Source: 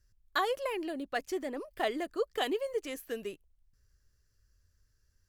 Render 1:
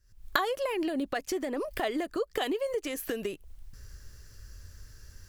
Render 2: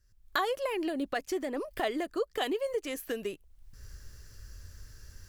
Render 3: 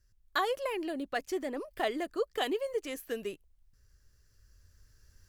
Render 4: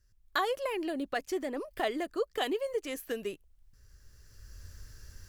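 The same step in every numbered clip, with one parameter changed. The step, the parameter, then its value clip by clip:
recorder AGC, rising by: 88 dB/s, 34 dB/s, 5 dB/s, 14 dB/s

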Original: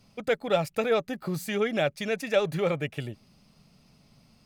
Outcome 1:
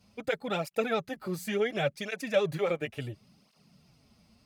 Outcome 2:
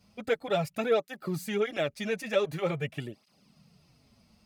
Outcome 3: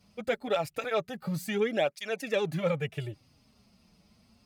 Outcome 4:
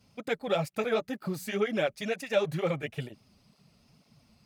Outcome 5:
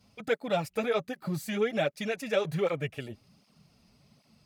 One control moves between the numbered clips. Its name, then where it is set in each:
cancelling through-zero flanger, nulls at: 0.71 Hz, 0.46 Hz, 0.25 Hz, 2.1 Hz, 1.3 Hz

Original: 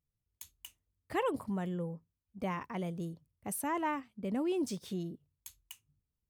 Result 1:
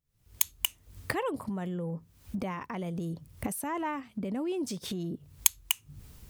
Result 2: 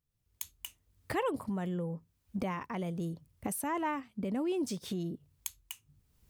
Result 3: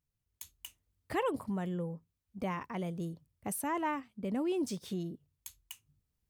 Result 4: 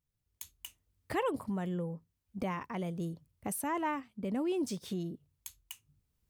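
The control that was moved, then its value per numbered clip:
recorder AGC, rising by: 88 dB/s, 33 dB/s, 5.3 dB/s, 13 dB/s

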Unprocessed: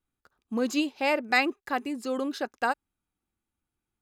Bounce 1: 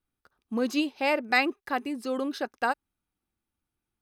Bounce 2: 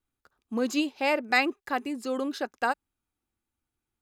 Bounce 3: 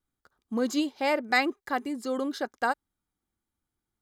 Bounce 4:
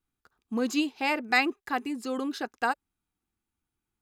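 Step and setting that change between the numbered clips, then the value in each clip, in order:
band-stop, frequency: 7.1 kHz, 180 Hz, 2.6 kHz, 570 Hz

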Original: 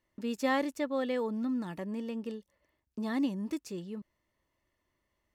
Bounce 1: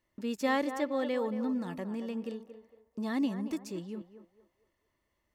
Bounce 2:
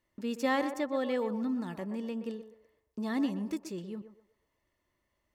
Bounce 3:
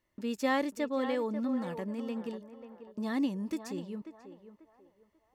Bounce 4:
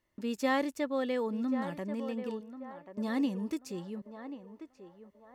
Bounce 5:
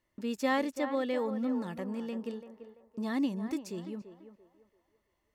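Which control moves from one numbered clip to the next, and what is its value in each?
band-passed feedback delay, time: 228 ms, 124 ms, 540 ms, 1086 ms, 338 ms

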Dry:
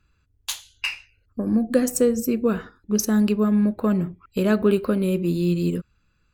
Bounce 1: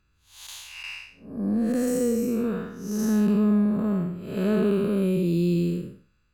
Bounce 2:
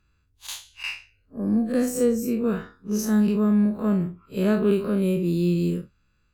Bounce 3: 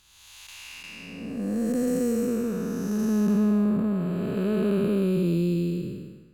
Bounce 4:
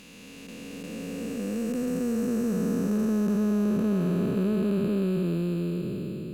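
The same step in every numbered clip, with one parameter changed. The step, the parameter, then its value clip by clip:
spectral blur, width: 250 ms, 86 ms, 613 ms, 1810 ms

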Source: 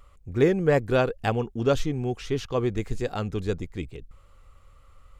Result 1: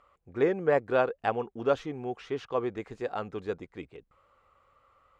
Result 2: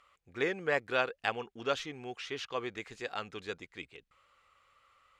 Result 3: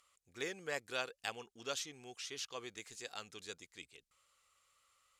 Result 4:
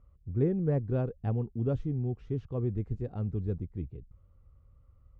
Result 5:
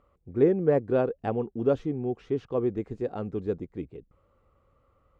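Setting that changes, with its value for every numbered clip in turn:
band-pass filter, frequency: 910 Hz, 2.3 kHz, 7.2 kHz, 100 Hz, 350 Hz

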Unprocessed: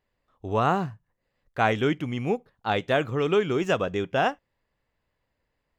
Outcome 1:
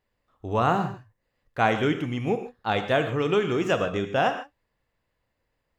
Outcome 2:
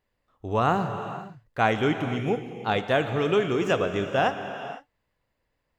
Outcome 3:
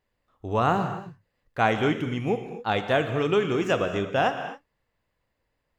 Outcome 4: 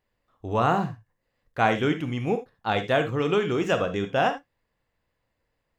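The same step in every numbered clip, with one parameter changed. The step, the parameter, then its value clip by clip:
gated-style reverb, gate: 170 ms, 530 ms, 290 ms, 100 ms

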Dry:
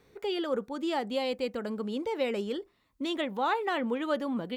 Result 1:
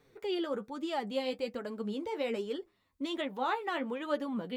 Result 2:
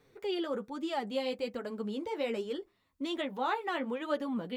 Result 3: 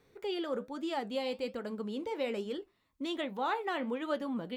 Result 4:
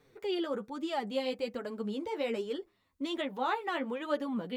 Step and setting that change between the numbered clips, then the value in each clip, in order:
flange, regen: +33%, -22%, -72%, +10%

